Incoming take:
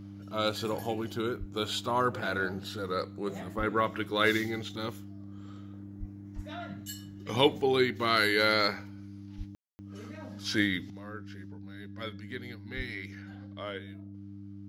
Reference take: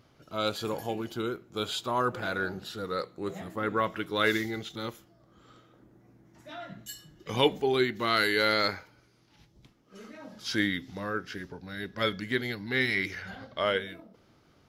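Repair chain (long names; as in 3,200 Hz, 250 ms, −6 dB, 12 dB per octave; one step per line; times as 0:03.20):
hum removal 99.7 Hz, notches 3
high-pass at the plosives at 0:01.39/0:03.57/0:05.99/0:06.35/0:09.37/0:12.76
ambience match 0:09.55–0:09.79
level 0 dB, from 0:10.90 +11.5 dB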